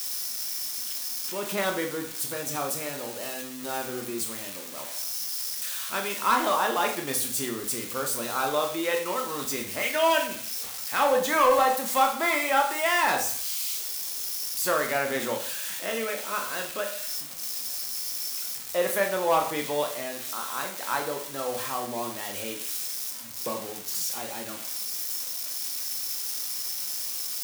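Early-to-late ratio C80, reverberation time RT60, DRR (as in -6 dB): 12.0 dB, 0.50 s, 3.0 dB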